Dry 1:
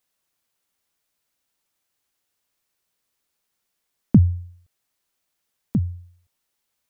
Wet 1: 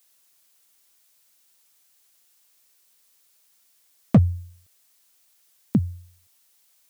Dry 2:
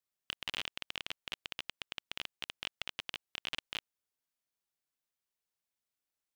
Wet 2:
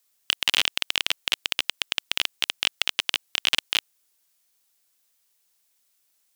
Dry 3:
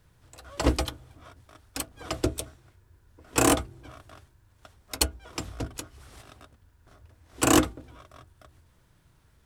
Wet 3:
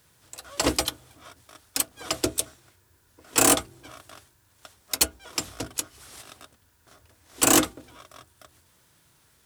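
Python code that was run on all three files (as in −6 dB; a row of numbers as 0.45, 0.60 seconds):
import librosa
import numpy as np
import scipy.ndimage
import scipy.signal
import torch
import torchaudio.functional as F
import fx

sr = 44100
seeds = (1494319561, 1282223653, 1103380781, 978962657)

y = fx.highpass(x, sr, hz=220.0, slope=6)
y = fx.high_shelf(y, sr, hz=3300.0, db=10.5)
y = np.clip(y, -10.0 ** (-14.0 / 20.0), 10.0 ** (-14.0 / 20.0))
y = y * 10.0 ** (-30 / 20.0) / np.sqrt(np.mean(np.square(y)))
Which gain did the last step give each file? +5.5, +12.5, +1.5 decibels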